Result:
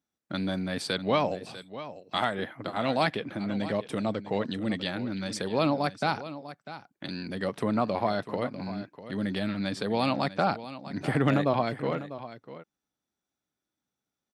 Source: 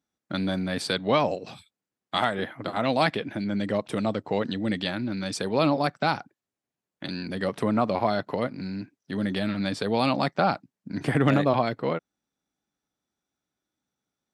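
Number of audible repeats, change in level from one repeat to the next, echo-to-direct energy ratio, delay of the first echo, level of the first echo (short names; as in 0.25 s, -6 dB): 1, no steady repeat, -14.0 dB, 0.647 s, -14.0 dB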